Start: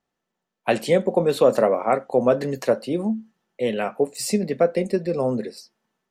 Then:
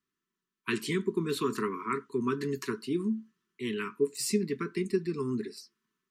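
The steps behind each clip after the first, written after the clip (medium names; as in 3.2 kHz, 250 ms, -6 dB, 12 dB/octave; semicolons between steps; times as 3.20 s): Chebyshev band-stop 430–980 Hz, order 5; bass shelf 65 Hz -10.5 dB; trim -4.5 dB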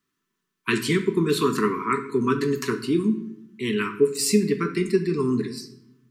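simulated room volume 210 m³, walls mixed, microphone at 0.42 m; trim +8 dB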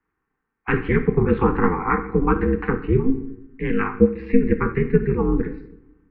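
mistuned SSB -81 Hz 160–2200 Hz; ring modulator 130 Hz; trim +7 dB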